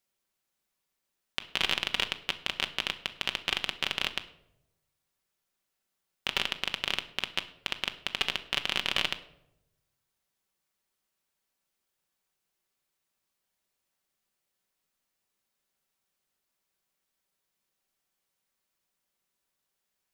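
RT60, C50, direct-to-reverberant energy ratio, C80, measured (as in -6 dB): 0.85 s, 15.0 dB, 7.0 dB, 17.5 dB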